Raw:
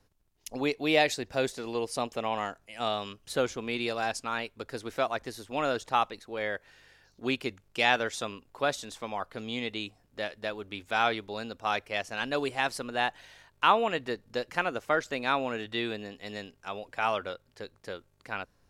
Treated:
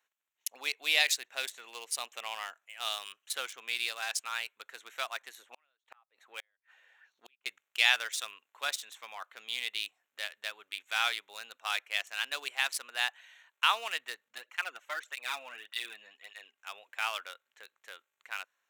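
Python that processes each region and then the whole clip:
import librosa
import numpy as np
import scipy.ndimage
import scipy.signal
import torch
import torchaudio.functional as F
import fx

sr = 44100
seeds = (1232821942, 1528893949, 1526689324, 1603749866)

y = fx.chain(x, sr, fx.peak_eq(hz=7400.0, db=-7.0, octaves=2.7),
    fx.gate_flip(shuts_db=-25.0, range_db=-40),
    fx.bell_lfo(hz=1.4, low_hz=530.0, high_hz=4800.0, db=11), at=(5.42, 7.46))
y = fx.chain(y, sr, fx.high_shelf(hz=6100.0, db=-4.5),
    fx.flanger_cancel(hz=1.7, depth_ms=2.9), at=(14.28, 16.58))
y = fx.wiener(y, sr, points=9)
y = scipy.signal.sosfilt(scipy.signal.bessel(2, 2400.0, 'highpass', norm='mag', fs=sr, output='sos'), y)
y = fx.high_shelf(y, sr, hz=8300.0, db=11.0)
y = y * 10.0 ** (4.5 / 20.0)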